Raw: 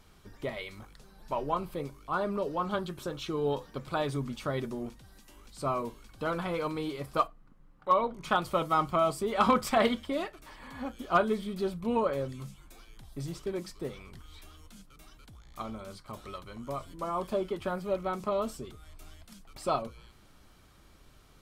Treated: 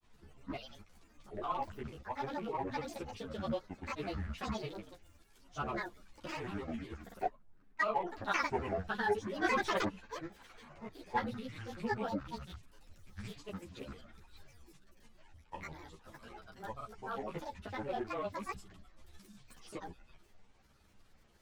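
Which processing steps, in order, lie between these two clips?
rattling part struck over -39 dBFS, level -32 dBFS; grains, spray 36 ms, pitch spread up and down by 0 st; frequency shift -15 Hz; grains, pitch spread up and down by 12 st; ensemble effect; gain -2.5 dB

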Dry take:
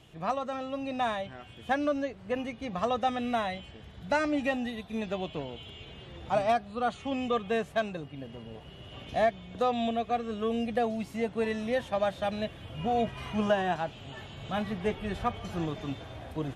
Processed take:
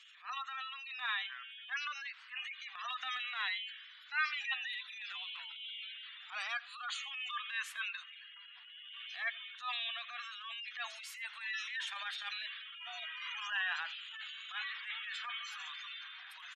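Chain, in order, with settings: inverse Chebyshev high-pass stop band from 530 Hz, stop band 50 dB; spectral gate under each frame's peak -20 dB strong; transient shaper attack -12 dB, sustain +5 dB; echo 85 ms -22 dB; gain +4 dB

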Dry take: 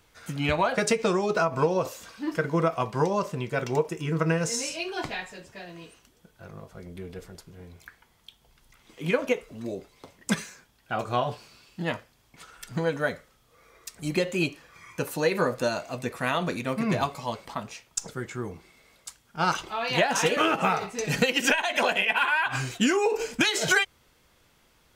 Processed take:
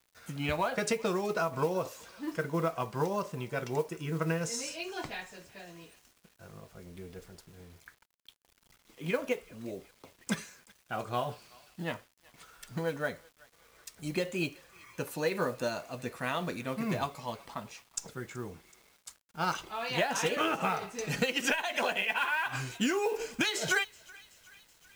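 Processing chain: thinning echo 0.377 s, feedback 69%, high-pass 1100 Hz, level -22 dB; bit-crush 9-bit; modulation noise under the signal 25 dB; gain -6.5 dB

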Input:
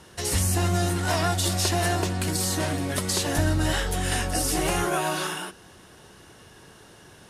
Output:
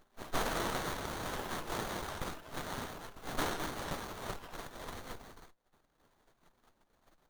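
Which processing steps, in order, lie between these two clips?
spectral gate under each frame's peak -30 dB weak; 4.36–5.11 high shelf 5800 Hz -7 dB; reverb removal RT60 0.98 s; running maximum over 17 samples; gain +10 dB

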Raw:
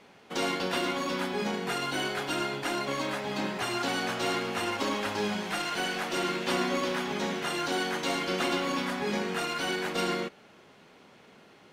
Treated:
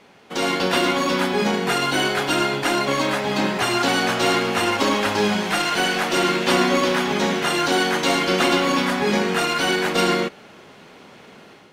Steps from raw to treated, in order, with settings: AGC gain up to 6 dB; gain +4.5 dB

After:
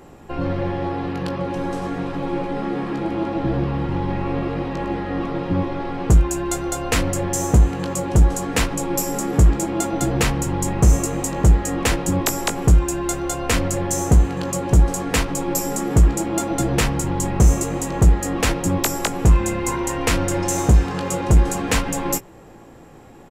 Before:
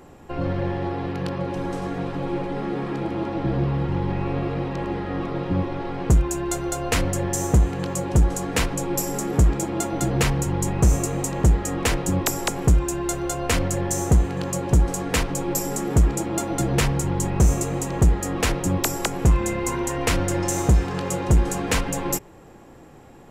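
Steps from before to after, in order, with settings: doubler 18 ms -9 dB; gain +2 dB

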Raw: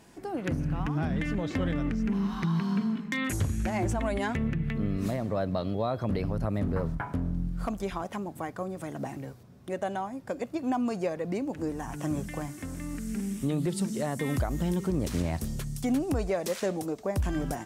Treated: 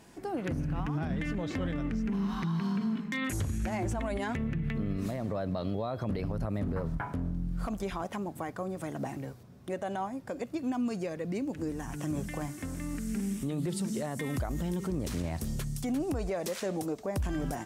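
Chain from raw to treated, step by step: 10.43–12.13 dynamic EQ 800 Hz, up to -7 dB, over -44 dBFS, Q 1; limiter -24.5 dBFS, peak gain reduction 5.5 dB

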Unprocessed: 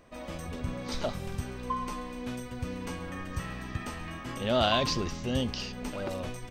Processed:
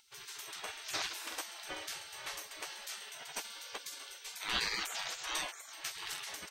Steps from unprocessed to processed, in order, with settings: spectral gate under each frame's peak -25 dB weak; gain +8.5 dB

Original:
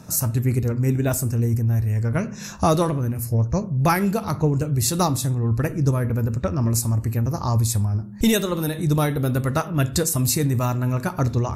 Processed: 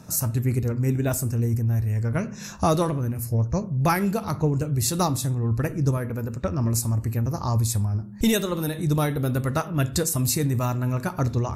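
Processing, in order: 5.97–6.44 low shelf 130 Hz -10 dB; gain -2.5 dB

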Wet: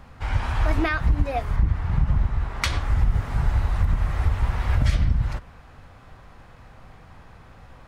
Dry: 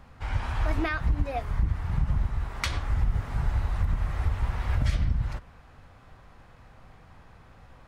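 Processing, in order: 1.56–2.62 high shelf 7100 Hz -10.5 dB; gain +5 dB

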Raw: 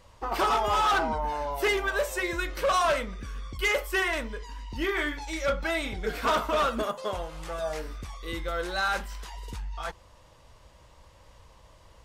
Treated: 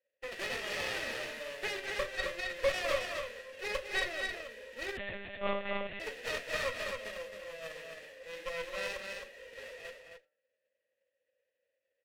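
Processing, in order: spectral whitening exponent 0.1; gate -43 dBFS, range -18 dB; vowel filter e; de-hum 150.3 Hz, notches 12; small resonant body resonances 220/1900 Hz, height 8 dB; added harmonics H 6 -13 dB, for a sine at -21.5 dBFS; flange 0.2 Hz, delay 6.9 ms, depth 5.7 ms, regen -69%; on a send: loudspeakers at several distances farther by 70 m -11 dB, 91 m -5 dB; 4.97–6 on the sum: monotone LPC vocoder at 8 kHz 200 Hz; mismatched tape noise reduction decoder only; gain +6 dB

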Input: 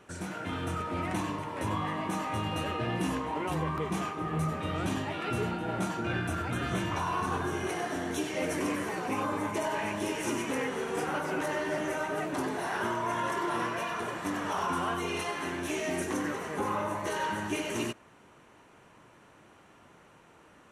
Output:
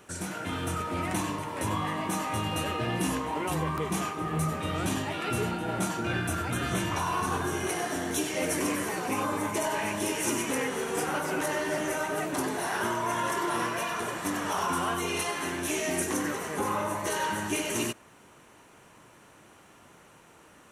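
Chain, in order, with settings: high shelf 6100 Hz +12 dB; gain +1.5 dB

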